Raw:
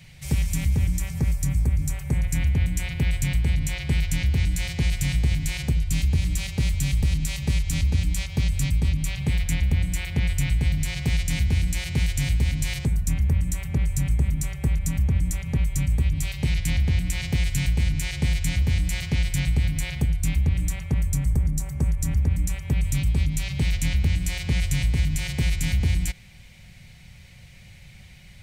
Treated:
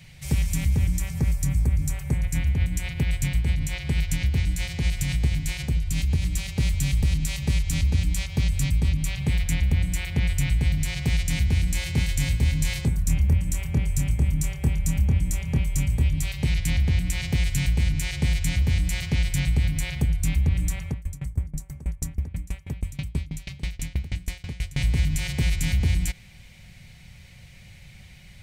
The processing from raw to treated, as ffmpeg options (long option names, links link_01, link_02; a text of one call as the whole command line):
ffmpeg -i in.wav -filter_complex "[0:a]asplit=3[link_01][link_02][link_03];[link_01]afade=type=out:start_time=2.09:duration=0.02[link_04];[link_02]tremolo=f=8:d=0.31,afade=type=in:start_time=2.09:duration=0.02,afade=type=out:start_time=6.55:duration=0.02[link_05];[link_03]afade=type=in:start_time=6.55:duration=0.02[link_06];[link_04][link_05][link_06]amix=inputs=3:normalize=0,asettb=1/sr,asplit=3[link_07][link_08][link_09];[link_07]atrim=end=11.704[link_10];[link_08]atrim=start=11.7:end=16.19,asetpts=PTS-STARTPTS,afade=type=in:duration=0.004:curve=qsin,afade=type=out:start_time=4.486:duration=0.004:curve=qsin,asplit=2[link_11][link_12];[link_12]adelay=26,volume=-7.5dB[link_13];[link_11][link_13]amix=inputs=2:normalize=0,atrim=end_sample=198009[link_14];[link_09]atrim=start=16.186[link_15];[link_10][link_14]acrossfade=duration=0.004:curve1=hsin:curve2=qsin[link_16];[link_16][link_15]acrossfade=duration=0.004:curve1=qsin:curve2=hsin,asettb=1/sr,asplit=3[link_17][link_18][link_19];[link_17]atrim=end=20.894[link_20];[link_18]atrim=start=20.89:end=24.77,asetpts=PTS-STARTPTS,afade=type=in:duration=0.004:curve=qsin,afade=type=out:start_time=3.876:duration=0.004:curve=qsin,aeval=exprs='val(0)*pow(10,-25*if(lt(mod(6.2*n/s,1),2*abs(6.2)/1000),1-mod(6.2*n/s,1)/(2*abs(6.2)/1000),(mod(6.2*n/s,1)-2*abs(6.2)/1000)/(1-2*abs(6.2)/1000))/20)':channel_layout=same[link_21];[link_19]atrim=start=24.766[link_22];[link_20][link_21]acrossfade=duration=0.004:curve1=hsin:curve2=qsin[link_23];[link_23][link_22]acrossfade=duration=0.004:curve1=qsin:curve2=hsin" out.wav